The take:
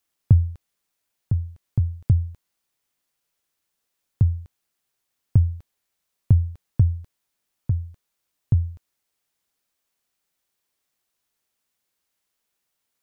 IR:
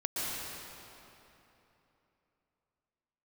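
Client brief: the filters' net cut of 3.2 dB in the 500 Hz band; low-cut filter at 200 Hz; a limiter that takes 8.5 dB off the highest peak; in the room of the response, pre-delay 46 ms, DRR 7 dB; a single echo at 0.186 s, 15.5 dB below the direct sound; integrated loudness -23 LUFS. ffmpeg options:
-filter_complex "[0:a]highpass=200,equalizer=f=500:t=o:g=-4,alimiter=limit=-22dB:level=0:latency=1,aecho=1:1:186:0.168,asplit=2[a][b];[1:a]atrim=start_sample=2205,adelay=46[c];[b][c]afir=irnorm=-1:irlink=0,volume=-13.5dB[d];[a][d]amix=inputs=2:normalize=0,volume=16.5dB"

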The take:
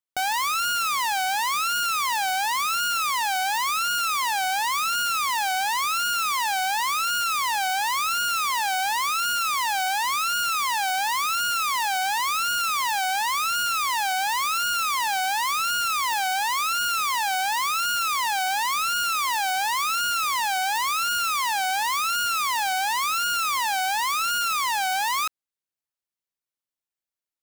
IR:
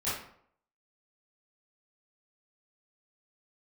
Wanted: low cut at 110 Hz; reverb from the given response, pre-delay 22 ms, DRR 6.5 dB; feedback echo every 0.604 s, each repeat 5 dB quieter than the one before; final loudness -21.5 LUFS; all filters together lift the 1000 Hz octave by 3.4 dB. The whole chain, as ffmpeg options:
-filter_complex "[0:a]highpass=110,equalizer=f=1k:t=o:g=4.5,aecho=1:1:604|1208|1812|2416|3020|3624|4228:0.562|0.315|0.176|0.0988|0.0553|0.031|0.0173,asplit=2[a][b];[1:a]atrim=start_sample=2205,adelay=22[c];[b][c]afir=irnorm=-1:irlink=0,volume=-13.5dB[d];[a][d]amix=inputs=2:normalize=0,volume=-3dB"

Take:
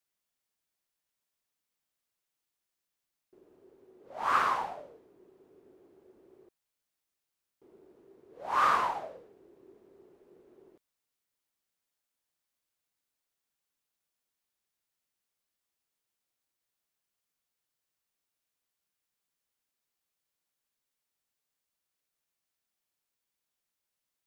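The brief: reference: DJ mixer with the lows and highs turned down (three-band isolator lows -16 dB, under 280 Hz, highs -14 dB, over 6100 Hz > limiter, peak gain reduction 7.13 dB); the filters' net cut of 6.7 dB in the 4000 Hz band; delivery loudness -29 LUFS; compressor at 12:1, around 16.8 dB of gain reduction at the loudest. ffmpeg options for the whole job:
-filter_complex "[0:a]equalizer=f=4k:t=o:g=-8.5,acompressor=threshold=-39dB:ratio=12,acrossover=split=280 6100:gain=0.158 1 0.2[a][b][c];[a][b][c]amix=inputs=3:normalize=0,volume=23.5dB,alimiter=limit=-14.5dB:level=0:latency=1"

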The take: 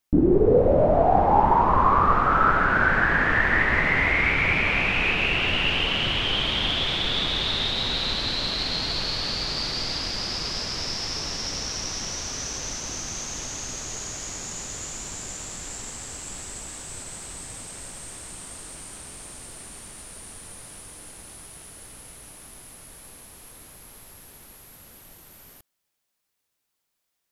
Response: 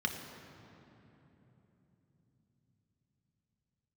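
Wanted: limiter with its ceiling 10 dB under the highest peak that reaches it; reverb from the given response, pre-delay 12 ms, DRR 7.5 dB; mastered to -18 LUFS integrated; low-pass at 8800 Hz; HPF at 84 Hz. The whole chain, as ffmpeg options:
-filter_complex "[0:a]highpass=84,lowpass=8.8k,alimiter=limit=-16dB:level=0:latency=1,asplit=2[a][b];[1:a]atrim=start_sample=2205,adelay=12[c];[b][c]afir=irnorm=-1:irlink=0,volume=-13dB[d];[a][d]amix=inputs=2:normalize=0,volume=7dB"

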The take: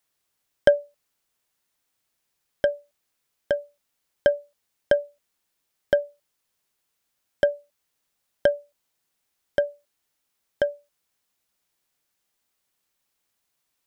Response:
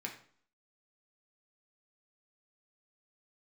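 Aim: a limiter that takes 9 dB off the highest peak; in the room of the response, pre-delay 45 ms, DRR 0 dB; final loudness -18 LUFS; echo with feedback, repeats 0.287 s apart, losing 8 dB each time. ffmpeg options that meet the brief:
-filter_complex "[0:a]alimiter=limit=-12.5dB:level=0:latency=1,aecho=1:1:287|574|861|1148|1435:0.398|0.159|0.0637|0.0255|0.0102,asplit=2[a][b];[1:a]atrim=start_sample=2205,adelay=45[c];[b][c]afir=irnorm=-1:irlink=0,volume=-0.5dB[d];[a][d]amix=inputs=2:normalize=0,volume=10dB"

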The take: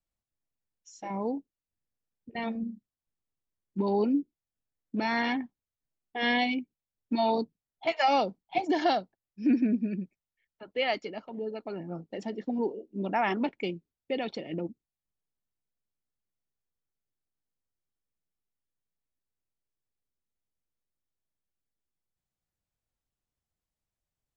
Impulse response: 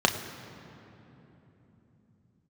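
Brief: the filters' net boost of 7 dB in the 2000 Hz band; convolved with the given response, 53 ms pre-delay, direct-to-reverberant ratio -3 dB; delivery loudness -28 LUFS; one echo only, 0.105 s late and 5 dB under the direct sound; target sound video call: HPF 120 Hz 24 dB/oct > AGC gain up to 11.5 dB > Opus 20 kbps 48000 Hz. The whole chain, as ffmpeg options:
-filter_complex "[0:a]equalizer=f=2k:t=o:g=8,aecho=1:1:105:0.562,asplit=2[a][b];[1:a]atrim=start_sample=2205,adelay=53[c];[b][c]afir=irnorm=-1:irlink=0,volume=-12dB[d];[a][d]amix=inputs=2:normalize=0,highpass=f=120:w=0.5412,highpass=f=120:w=1.3066,dynaudnorm=m=11.5dB,volume=-7.5dB" -ar 48000 -c:a libopus -b:a 20k

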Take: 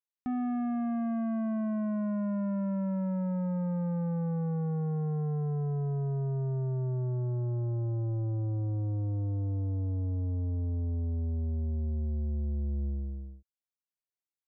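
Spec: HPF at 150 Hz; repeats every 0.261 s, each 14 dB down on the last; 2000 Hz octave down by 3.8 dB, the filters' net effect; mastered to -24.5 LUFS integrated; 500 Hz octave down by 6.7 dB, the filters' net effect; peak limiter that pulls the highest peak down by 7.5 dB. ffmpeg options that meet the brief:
-af "highpass=150,equalizer=f=500:t=o:g=-8.5,equalizer=f=2k:t=o:g=-4.5,alimiter=level_in=12dB:limit=-24dB:level=0:latency=1,volume=-12dB,aecho=1:1:261|522:0.2|0.0399,volume=17.5dB"

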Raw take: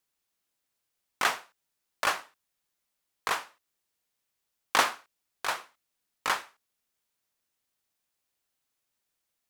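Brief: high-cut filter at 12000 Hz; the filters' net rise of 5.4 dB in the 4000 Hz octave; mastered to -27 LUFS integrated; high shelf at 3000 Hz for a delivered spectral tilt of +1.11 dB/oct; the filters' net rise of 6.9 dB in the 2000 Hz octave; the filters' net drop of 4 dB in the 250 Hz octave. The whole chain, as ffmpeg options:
-af "lowpass=12k,equalizer=f=250:t=o:g=-5.5,equalizer=f=2k:t=o:g=8.5,highshelf=f=3k:g=-3.5,equalizer=f=4k:t=o:g=6.5,volume=-1dB"

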